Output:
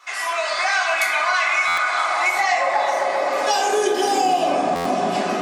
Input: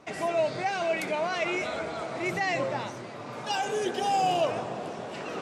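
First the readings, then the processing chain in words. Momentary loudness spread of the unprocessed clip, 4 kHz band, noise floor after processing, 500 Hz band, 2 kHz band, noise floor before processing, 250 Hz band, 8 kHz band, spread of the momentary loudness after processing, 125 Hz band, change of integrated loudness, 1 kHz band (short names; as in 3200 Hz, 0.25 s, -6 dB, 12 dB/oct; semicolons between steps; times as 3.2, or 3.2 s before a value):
11 LU, +10.5 dB, -24 dBFS, +7.0 dB, +13.5 dB, -40 dBFS, +7.0 dB, +13.5 dB, 4 LU, n/a, +10.0 dB, +10.5 dB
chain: AGC gain up to 6 dB; dynamic EQ 2800 Hz, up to -6 dB, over -46 dBFS, Q 5.6; analogue delay 0.131 s, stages 2048, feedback 80%, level -8.5 dB; high-pass sweep 1200 Hz -> 220 Hz, 1.86–4.72; HPF 110 Hz; tilt +2.5 dB/oct; notch comb 460 Hz; shoebox room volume 480 m³, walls furnished, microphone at 4.2 m; compressor 5:1, threshold -19 dBFS, peak gain reduction 11.5 dB; stuck buffer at 1.67/4.75, samples 512, times 8; gain +2.5 dB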